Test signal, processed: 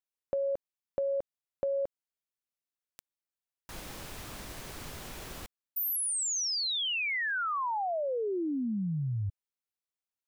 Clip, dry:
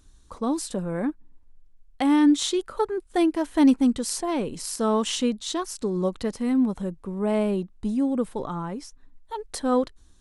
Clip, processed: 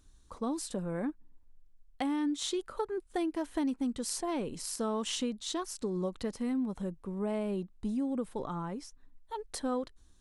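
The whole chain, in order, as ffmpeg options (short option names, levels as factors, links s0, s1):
-af "acompressor=threshold=0.0708:ratio=6,volume=0.501"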